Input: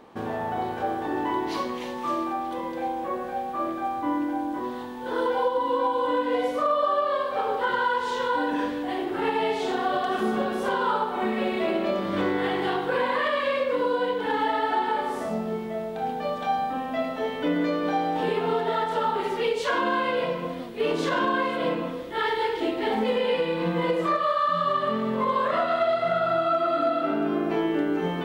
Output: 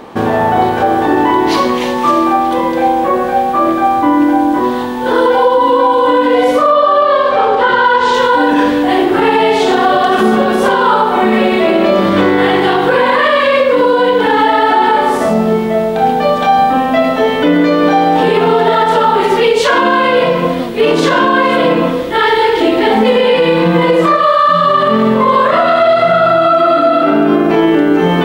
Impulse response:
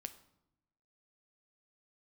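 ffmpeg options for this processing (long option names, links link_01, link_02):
-filter_complex "[0:a]asettb=1/sr,asplit=3[link_01][link_02][link_03];[link_01]atrim=end=6.714[link_04];[link_02]atrim=start=6.71:end=8.14,asetpts=PTS-STARTPTS,afade=type=in:duration=0.004:curve=qsin,afade=type=out:start_time=1.426:duration=0.004:curve=qsin,lowpass=6300[link_05];[link_03]atrim=start=8.136[link_06];[link_04][link_05]acrossfade=duration=0.004:curve1=hsin:curve2=qsin[link_07];[link_07][link_06]acrossfade=duration=0.004:curve1=qsin:curve2=hsin,alimiter=level_in=19dB:limit=-1dB:release=50:level=0:latency=1,volume=-1dB"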